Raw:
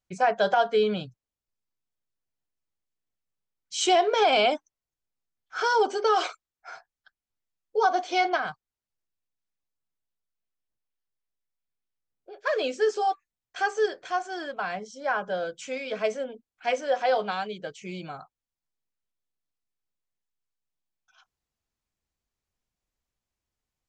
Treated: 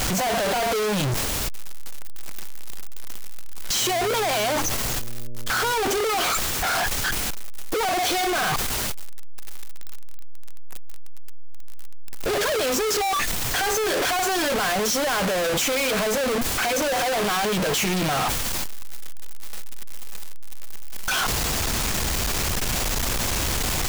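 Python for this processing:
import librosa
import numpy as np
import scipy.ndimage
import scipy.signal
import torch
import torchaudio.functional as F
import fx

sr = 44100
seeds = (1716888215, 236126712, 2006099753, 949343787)

y = np.sign(x) * np.sqrt(np.mean(np.square(x)))
y = fx.dmg_buzz(y, sr, base_hz=120.0, harmonics=5, level_db=-48.0, tilt_db=-6, odd_only=False, at=(3.8, 5.72), fade=0.02)
y = fx.transient(y, sr, attack_db=-1, sustain_db=6)
y = F.gain(torch.from_numpy(y), 7.5).numpy()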